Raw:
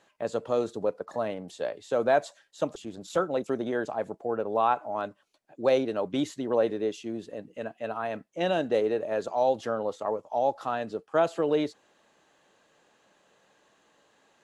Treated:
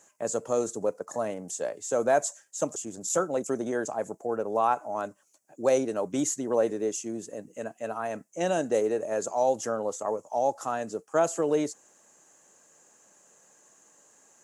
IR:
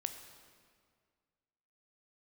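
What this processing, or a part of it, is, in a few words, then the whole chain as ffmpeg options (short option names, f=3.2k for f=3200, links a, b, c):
budget condenser microphone: -af "highpass=93,highshelf=f=5.1k:t=q:w=3:g=11"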